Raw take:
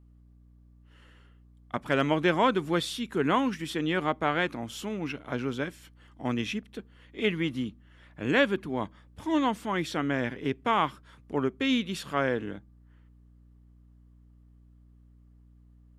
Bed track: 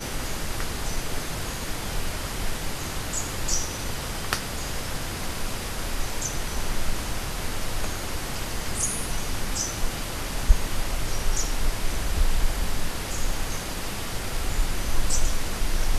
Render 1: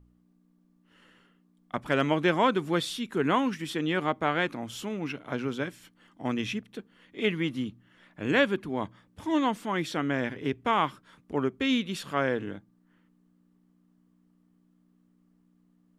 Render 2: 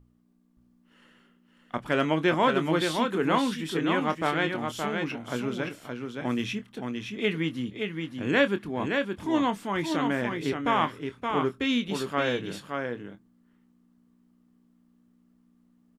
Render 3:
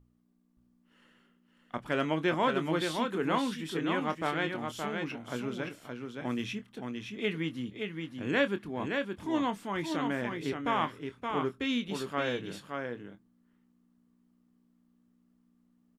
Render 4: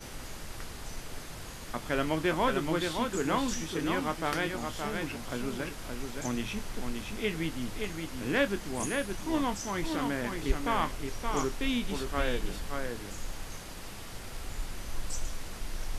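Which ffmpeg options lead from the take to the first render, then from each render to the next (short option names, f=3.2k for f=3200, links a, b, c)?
-af "bandreject=f=60:t=h:w=4,bandreject=f=120:t=h:w=4"
-filter_complex "[0:a]asplit=2[a][b];[b]adelay=25,volume=-10.5dB[c];[a][c]amix=inputs=2:normalize=0,aecho=1:1:571:0.562"
-af "volume=-5dB"
-filter_complex "[1:a]volume=-12dB[a];[0:a][a]amix=inputs=2:normalize=0"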